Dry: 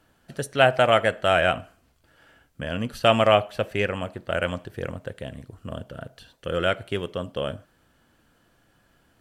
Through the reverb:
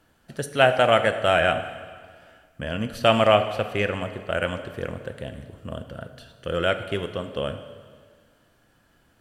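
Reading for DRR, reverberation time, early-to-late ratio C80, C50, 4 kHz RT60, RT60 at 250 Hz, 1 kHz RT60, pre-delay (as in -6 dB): 9.0 dB, 1.8 s, 11.5 dB, 10.5 dB, 1.7 s, 1.8 s, 1.8 s, 5 ms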